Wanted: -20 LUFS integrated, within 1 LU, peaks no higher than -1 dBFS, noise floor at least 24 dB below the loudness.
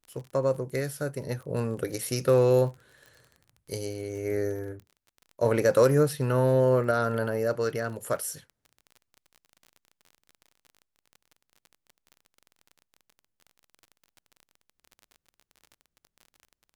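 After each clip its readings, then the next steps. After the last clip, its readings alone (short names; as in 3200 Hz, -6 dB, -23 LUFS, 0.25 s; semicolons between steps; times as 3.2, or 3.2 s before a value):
ticks 32/s; loudness -26.5 LUFS; peak -9.5 dBFS; loudness target -20.0 LUFS
-> de-click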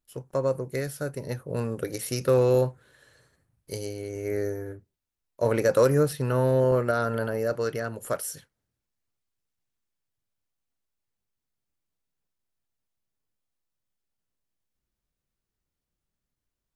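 ticks 0/s; loudness -26.5 LUFS; peak -9.5 dBFS; loudness target -20.0 LUFS
-> gain +6.5 dB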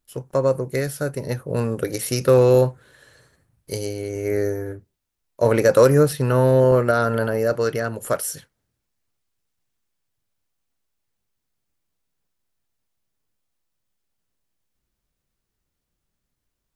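loudness -20.0 LUFS; peak -3.0 dBFS; noise floor -79 dBFS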